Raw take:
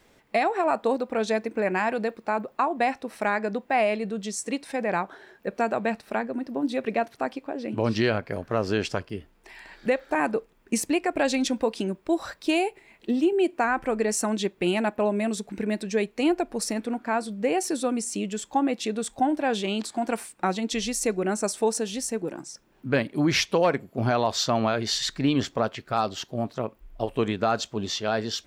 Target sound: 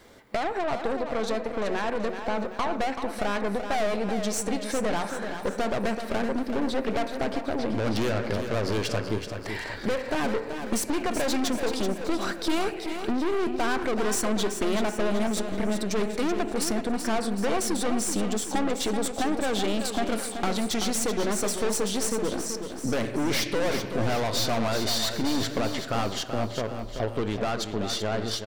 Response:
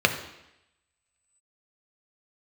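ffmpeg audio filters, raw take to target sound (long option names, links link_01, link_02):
-filter_complex "[0:a]dynaudnorm=framelen=790:gausssize=9:maxgain=6.5dB,asplit=2[link_01][link_02];[1:a]atrim=start_sample=2205[link_03];[link_02][link_03]afir=irnorm=-1:irlink=0,volume=-23dB[link_04];[link_01][link_04]amix=inputs=2:normalize=0,aeval=exprs='(tanh(14.1*val(0)+0.6)-tanh(0.6))/14.1':channel_layout=same,acompressor=threshold=-40dB:ratio=2,aecho=1:1:381|762|1143|1524|1905|2286:0.398|0.195|0.0956|0.0468|0.023|0.0112,volume=8dB"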